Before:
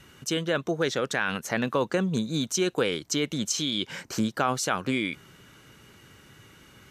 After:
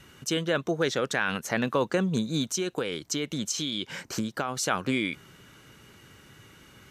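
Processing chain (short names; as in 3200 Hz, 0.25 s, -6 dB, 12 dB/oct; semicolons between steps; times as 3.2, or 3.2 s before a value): 2.42–4.57 compressor, threshold -26 dBFS, peak gain reduction 7 dB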